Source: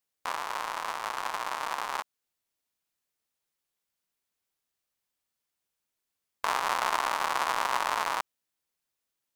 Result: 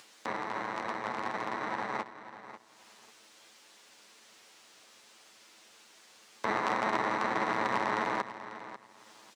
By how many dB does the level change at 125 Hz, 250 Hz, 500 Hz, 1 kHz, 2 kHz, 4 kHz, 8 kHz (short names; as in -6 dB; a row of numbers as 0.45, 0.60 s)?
n/a, +12.0 dB, +3.5 dB, -2.5 dB, -1.0 dB, -7.5 dB, -10.5 dB